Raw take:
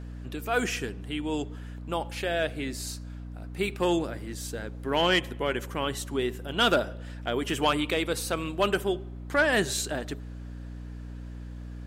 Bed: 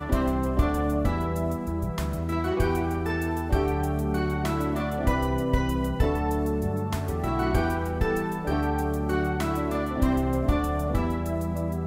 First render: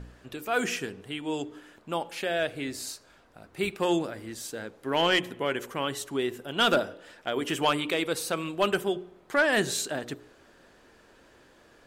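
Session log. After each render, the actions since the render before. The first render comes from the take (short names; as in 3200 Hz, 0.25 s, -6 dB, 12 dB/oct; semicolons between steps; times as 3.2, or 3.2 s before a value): de-hum 60 Hz, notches 8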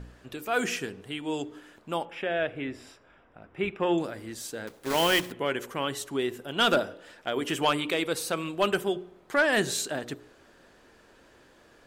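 2.05–3.98 polynomial smoothing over 25 samples; 4.67–5.33 block floating point 3-bit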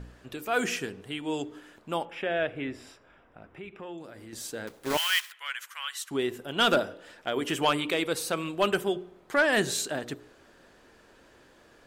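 3.48–4.33 compressor 2.5:1, threshold -45 dBFS; 4.97–6.11 HPF 1300 Hz 24 dB/oct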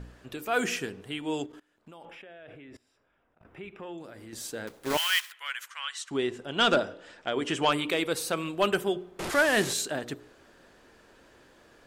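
1.46–3.45 level quantiser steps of 24 dB; 5.68–7.72 LPF 8300 Hz 24 dB/oct; 9.19–9.73 delta modulation 64 kbps, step -27.5 dBFS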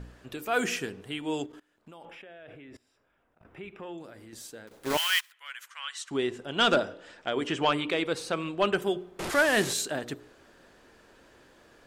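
3.95–4.71 fade out, to -12 dB; 5.21–6.1 fade in, from -14.5 dB; 7.47–8.82 air absorption 72 m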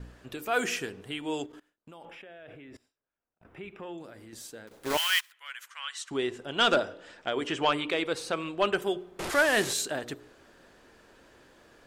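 gate with hold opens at -50 dBFS; dynamic EQ 180 Hz, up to -5 dB, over -42 dBFS, Q 1.1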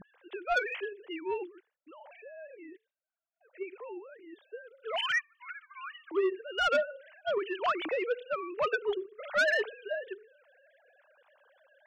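sine-wave speech; soft clip -21.5 dBFS, distortion -11 dB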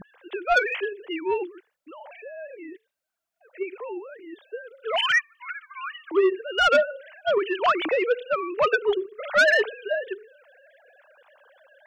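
gain +8.5 dB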